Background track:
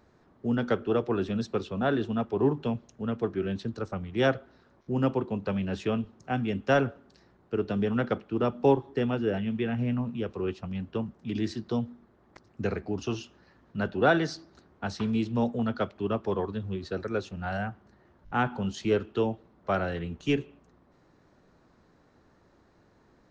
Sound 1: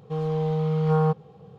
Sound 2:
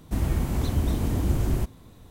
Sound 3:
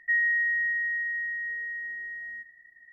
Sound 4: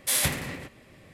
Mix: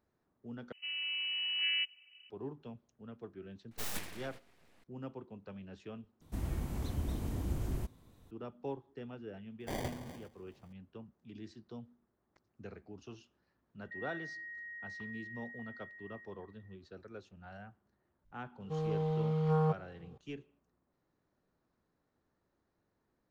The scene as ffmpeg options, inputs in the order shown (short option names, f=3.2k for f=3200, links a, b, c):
-filter_complex "[1:a]asplit=2[a][b];[4:a]asplit=2[c][d];[0:a]volume=-18.5dB[e];[a]lowpass=f=2.6k:t=q:w=0.5098,lowpass=f=2.6k:t=q:w=0.6013,lowpass=f=2.6k:t=q:w=0.9,lowpass=f=2.6k:t=q:w=2.563,afreqshift=-3100[f];[c]aeval=exprs='abs(val(0))':c=same[g];[d]acrusher=samples=33:mix=1:aa=0.000001[h];[3:a]acompressor=threshold=-29dB:ratio=6:attack=3.2:release=140:knee=1:detection=peak[i];[e]asplit=3[j][k][l];[j]atrim=end=0.724[m];[f]atrim=end=1.58,asetpts=PTS-STARTPTS,volume=-12.5dB[n];[k]atrim=start=2.296:end=6.214[o];[2:a]atrim=end=2.1,asetpts=PTS-STARTPTS,volume=-12dB[p];[l]atrim=start=8.306[q];[g]atrim=end=1.13,asetpts=PTS-STARTPTS,volume=-12dB,afade=t=in:d=0.004:c=hsin,afade=t=out:st=1.126:d=0.004:c=hsin,adelay=3710[r];[h]atrim=end=1.13,asetpts=PTS-STARTPTS,volume=-14dB,afade=t=in:d=0.004:c=hsin,afade=t=out:st=1.126:d=0.004:c=hsin,adelay=9600[s];[i]atrim=end=2.92,asetpts=PTS-STARTPTS,volume=-15.5dB,afade=t=in:d=0.004:c=hsin,afade=t=out:st=2.916:d=0.004:c=hsin,adelay=13830[t];[b]atrim=end=1.58,asetpts=PTS-STARTPTS,volume=-8.5dB,afade=t=in:d=0.004:c=hsin,afade=t=out:st=1.576:d=0.004:c=hsin,adelay=820260S[u];[m][n]acrossfade=d=0.004:c1=hsin:c2=hsin[v];[v][o]acrossfade=d=0.004:c1=hsin:c2=hsin[w];[w][p]acrossfade=d=0.004:c1=hsin:c2=hsin[x];[x][q]acrossfade=d=0.004:c1=hsin:c2=hsin[y];[y][r][s][t][u]amix=inputs=5:normalize=0"